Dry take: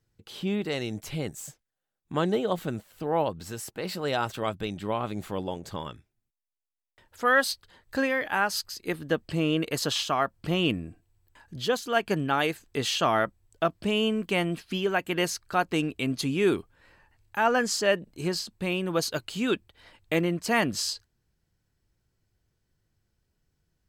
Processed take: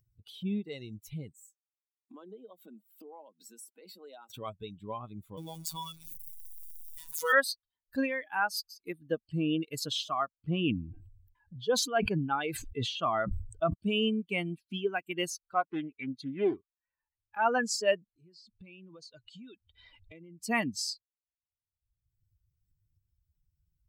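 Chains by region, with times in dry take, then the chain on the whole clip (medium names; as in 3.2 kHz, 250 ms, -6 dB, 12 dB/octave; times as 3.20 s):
1.32–4.30 s: steep high-pass 200 Hz 48 dB/octave + compression 2:1, threshold -46 dBFS
5.37–7.33 s: jump at every zero crossing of -31 dBFS + treble shelf 4.5 kHz +9 dB + robot voice 162 Hz
10.35–13.74 s: treble shelf 5.9 kHz -11.5 dB + decay stretcher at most 46 dB/s
15.52–17.42 s: overdrive pedal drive 8 dB, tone 1.5 kHz, clips at -12 dBFS + loudspeaker Doppler distortion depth 0.34 ms
18.14–20.43 s: companding laws mixed up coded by mu + low-pass 6.9 kHz + compression 2.5:1, threshold -47 dBFS
whole clip: expander on every frequency bin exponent 2; upward compressor, threshold -39 dBFS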